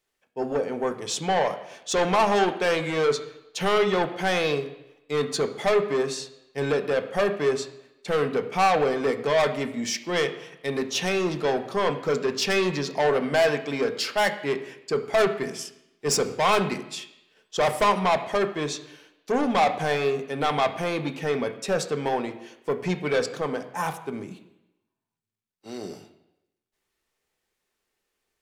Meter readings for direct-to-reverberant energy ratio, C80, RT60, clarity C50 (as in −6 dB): 6.0 dB, 14.0 dB, 0.90 s, 12.0 dB